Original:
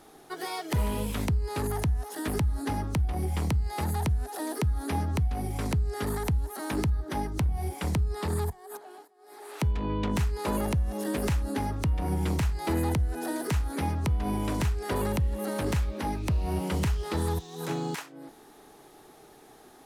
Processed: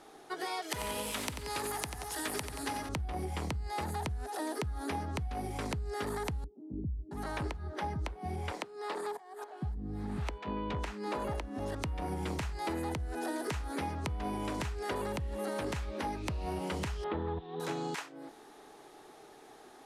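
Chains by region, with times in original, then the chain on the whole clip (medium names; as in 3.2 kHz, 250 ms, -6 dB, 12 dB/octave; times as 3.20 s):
0.62–2.89 s: tilt EQ +2.5 dB/octave + feedback delay 90 ms, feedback 59%, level -9.5 dB
6.44–11.75 s: treble shelf 6.1 kHz -9 dB + bands offset in time lows, highs 670 ms, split 290 Hz
17.04–17.60 s: Chebyshev low-pass 3.5 kHz, order 4 + tilt shelf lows +5.5 dB, about 1.4 kHz
whole clip: low-pass 9.8 kHz 12 dB/octave; tone controls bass -8 dB, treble -2 dB; compression, threshold -32 dBFS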